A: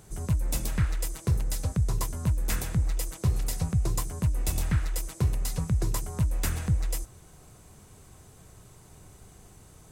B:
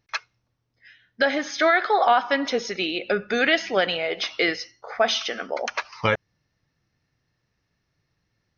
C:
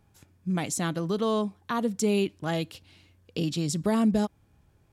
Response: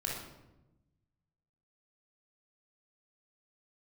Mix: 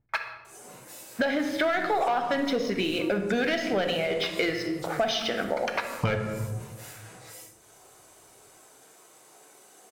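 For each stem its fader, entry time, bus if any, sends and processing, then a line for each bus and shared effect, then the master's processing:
+1.0 dB, 0.45 s, bus A, send -11 dB, phase scrambler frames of 0.2 s; HPF 340 Hz 24 dB/oct; compressor 4:1, threshold -48 dBFS, peak gain reduction 14 dB
-7.5 dB, 0.00 s, no bus, send -5 dB, low-pass opened by the level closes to 1500 Hz, open at -17 dBFS; low shelf 400 Hz +10.5 dB; sample leveller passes 2
-8.0 dB, 1.30 s, bus A, no send, dry
bus A: 0.0 dB, bell 130 Hz +11.5 dB 0.36 oct; limiter -33.5 dBFS, peak gain reduction 12 dB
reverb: on, RT60 1.0 s, pre-delay 20 ms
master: compressor 4:1, threshold -25 dBFS, peak gain reduction 12 dB

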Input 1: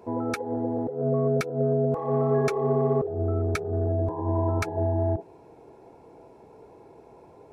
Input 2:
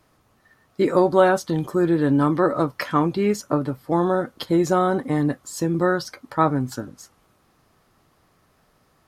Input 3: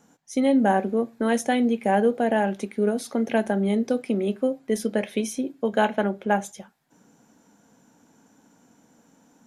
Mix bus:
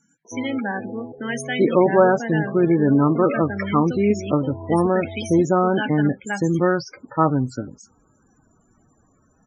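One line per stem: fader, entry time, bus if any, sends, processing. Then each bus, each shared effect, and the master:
-1.0 dB, 0.25 s, no send, auto duck -9 dB, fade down 1.30 s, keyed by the third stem
0.0 dB, 0.80 s, no send, low shelf 350 Hz +3.5 dB
-2.0 dB, 0.00 s, no send, EQ curve 110 Hz 0 dB, 650 Hz -9 dB, 2200 Hz +9 dB, 5300 Hz +5 dB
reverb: off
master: loudest bins only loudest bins 32

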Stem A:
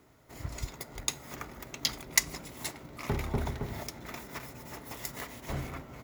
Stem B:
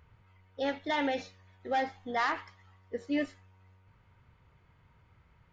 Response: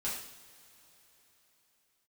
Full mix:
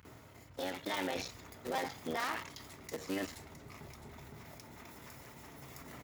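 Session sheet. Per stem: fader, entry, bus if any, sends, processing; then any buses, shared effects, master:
-19.5 dB, 0.05 s, no send, echo send -7.5 dB, fast leveller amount 70%; auto duck -11 dB, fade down 0.50 s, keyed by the second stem
+2.5 dB, 0.00 s, no send, no echo send, cycle switcher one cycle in 3, muted; high shelf 3700 Hz +9.5 dB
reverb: off
echo: feedback echo 0.662 s, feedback 27%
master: HPF 70 Hz; limiter -27 dBFS, peak gain reduction 12.5 dB

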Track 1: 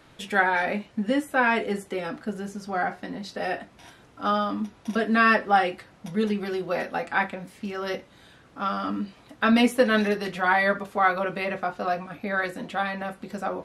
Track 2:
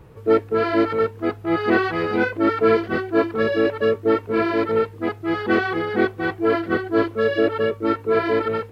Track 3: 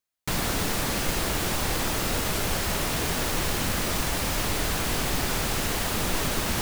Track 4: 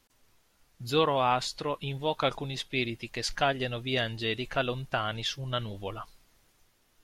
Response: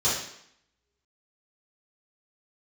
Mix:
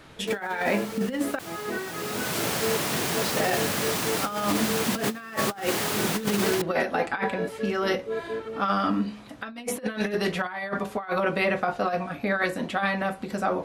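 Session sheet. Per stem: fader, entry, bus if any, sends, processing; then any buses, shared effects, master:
+2.0 dB, 0.00 s, muted 1.39–3.23, no send, de-hum 70.01 Hz, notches 16
-17.5 dB, 0.00 s, no send, comb 4.8 ms
1.8 s -15.5 dB -> 2.38 s -2.5 dB, 0.00 s, no send, HPF 120 Hz 24 dB/oct
off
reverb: off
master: negative-ratio compressor -25 dBFS, ratio -0.5

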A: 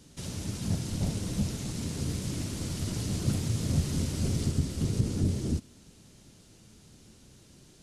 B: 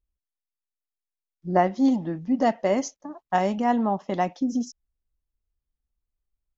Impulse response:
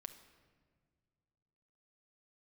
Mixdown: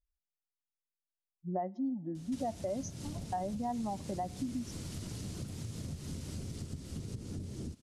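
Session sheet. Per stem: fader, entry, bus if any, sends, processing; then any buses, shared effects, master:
-0.5 dB, 2.15 s, no send, compressor 5:1, threshold -38 dBFS, peak gain reduction 16 dB
-7.0 dB, 0.00 s, send -14.5 dB, spectral contrast raised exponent 1.7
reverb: on, pre-delay 6 ms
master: compressor 2.5:1, threshold -36 dBFS, peak gain reduction 10 dB

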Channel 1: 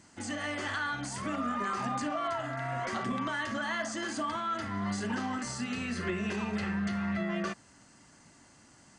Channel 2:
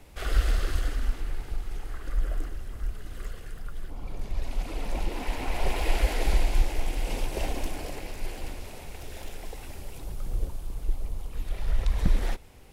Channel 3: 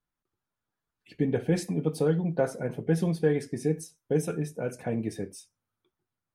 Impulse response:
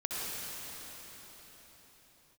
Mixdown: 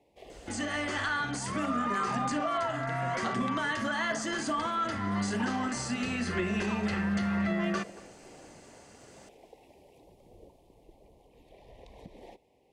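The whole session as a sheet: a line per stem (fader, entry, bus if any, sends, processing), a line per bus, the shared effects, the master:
+2.5 dB, 0.30 s, no bus, no send, echo send -21.5 dB, dry
-8.5 dB, 0.00 s, bus A, no send, no echo send, HPF 510 Hz 12 dB/oct; tilt -4.5 dB/oct
-16.5 dB, 0.00 s, bus A, no send, no echo send, dry
bus A: 0.0 dB, Butterworth band-stop 1400 Hz, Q 1.1; compressor, threshold -44 dBFS, peak gain reduction 9 dB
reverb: off
echo: echo 0.23 s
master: dry

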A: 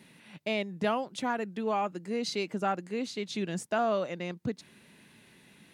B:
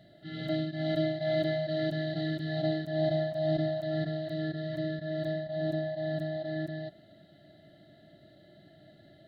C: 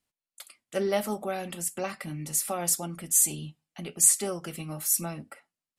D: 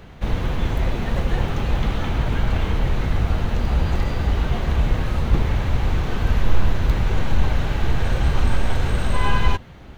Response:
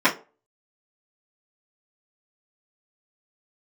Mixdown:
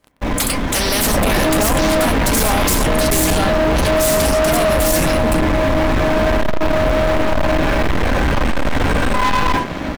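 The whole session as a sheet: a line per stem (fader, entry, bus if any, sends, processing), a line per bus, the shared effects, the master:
0.0 dB, 0.75 s, no send, dry
-8.0 dB, 0.95 s, muted 2.04–2.85, send -11 dB, dry
-4.5 dB, 0.00 s, no send, spectral compressor 4:1
0.84 s -19 dB -> 1.18 s -6.5 dB, 0.00 s, send -13 dB, vocal rider within 3 dB 0.5 s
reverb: on, RT60 0.35 s, pre-delay 3 ms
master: bell 610 Hz +2.5 dB 0.37 oct; sample leveller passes 5; limiter -12 dBFS, peak gain reduction 5.5 dB

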